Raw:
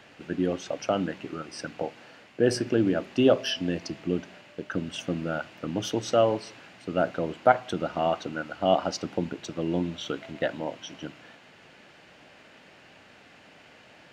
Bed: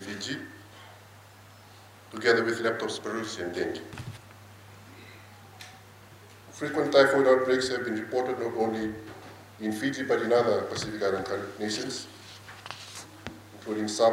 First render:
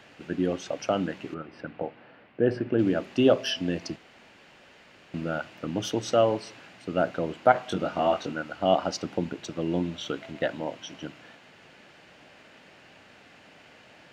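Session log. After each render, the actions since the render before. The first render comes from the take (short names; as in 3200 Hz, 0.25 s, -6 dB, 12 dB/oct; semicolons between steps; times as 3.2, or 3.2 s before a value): 1.34–2.79 air absorption 420 m; 3.96–5.14 room tone; 7.53–8.33 doubler 21 ms -4 dB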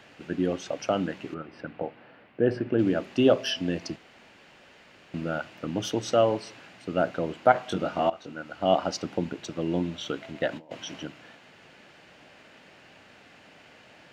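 8.1–8.71 fade in, from -17 dB; 10.52–11.03 negative-ratio compressor -39 dBFS, ratio -0.5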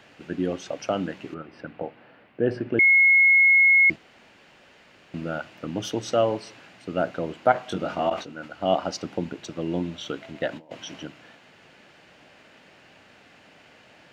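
2.79–3.9 bleep 2170 Hz -13 dBFS; 7.86–8.53 sustainer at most 130 dB/s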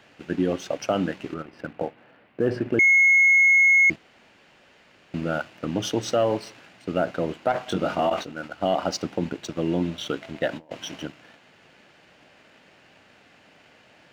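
sample leveller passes 1; limiter -13.5 dBFS, peak gain reduction 8 dB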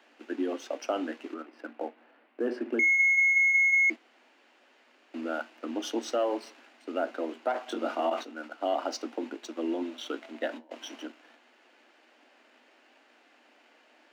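rippled Chebyshev high-pass 230 Hz, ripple 3 dB; flange 0.52 Hz, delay 5.4 ms, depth 2.4 ms, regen -80%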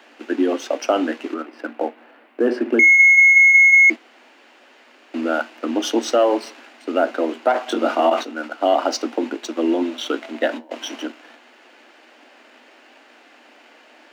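gain +12 dB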